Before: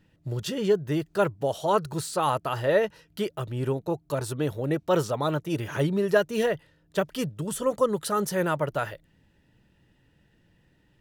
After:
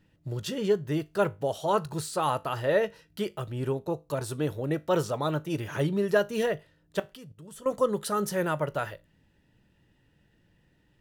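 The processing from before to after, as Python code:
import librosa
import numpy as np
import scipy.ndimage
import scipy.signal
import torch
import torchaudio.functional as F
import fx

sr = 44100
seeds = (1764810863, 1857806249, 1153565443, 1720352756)

y = fx.level_steps(x, sr, step_db=22, at=(6.99, 7.66))
y = fx.comb_fb(y, sr, f0_hz=51.0, decay_s=0.25, harmonics='all', damping=0.0, mix_pct=40)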